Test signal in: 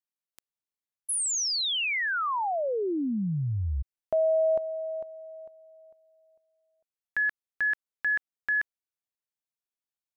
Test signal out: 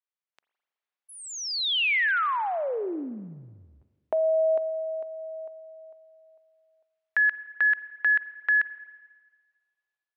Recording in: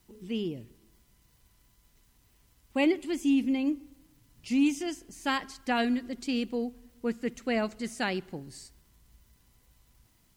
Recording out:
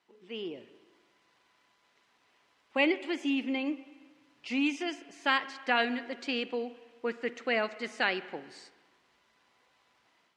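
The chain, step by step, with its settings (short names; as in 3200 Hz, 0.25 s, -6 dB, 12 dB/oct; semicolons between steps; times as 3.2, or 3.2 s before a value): HPF 540 Hz 12 dB/oct; AGC gain up to 7 dB; dynamic EQ 790 Hz, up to -6 dB, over -36 dBFS, Q 0.86; LPF 3000 Hz 12 dB/oct; spring tank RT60 1.5 s, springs 41/53 ms, chirp 45 ms, DRR 15.5 dB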